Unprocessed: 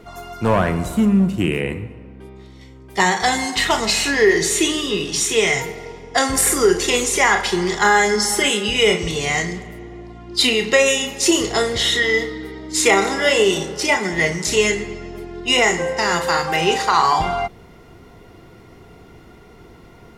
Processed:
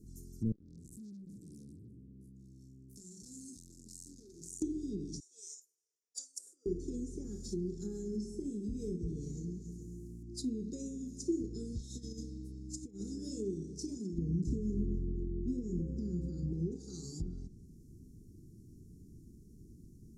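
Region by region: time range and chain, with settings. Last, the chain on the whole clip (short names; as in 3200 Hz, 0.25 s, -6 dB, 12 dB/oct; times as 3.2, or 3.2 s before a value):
0.52–4.62 compressor 5:1, threshold -27 dBFS + doubler 24 ms -6 dB + core saturation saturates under 3000 Hz
5.2–6.66 HPF 740 Hz 24 dB/oct + upward expander 2.5:1, over -31 dBFS
7.21–10.23 split-band echo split 1100 Hz, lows 0.211 s, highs 0.136 s, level -13.5 dB + modulation noise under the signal 22 dB
11.72–13.16 bell 360 Hz -8 dB 0.94 oct + negative-ratio compressor -20 dBFS, ratio -0.5
14.18–16.72 low shelf 390 Hz +12 dB + compressor 12:1, threshold -14 dBFS + feedback echo 0.246 s, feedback 53%, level -18 dB
whole clip: inverse Chebyshev band-stop 640–3100 Hz, stop band 50 dB; treble ducked by the level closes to 1700 Hz, closed at -22.5 dBFS; dynamic EQ 140 Hz, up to -5 dB, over -36 dBFS, Q 0.84; gain -8 dB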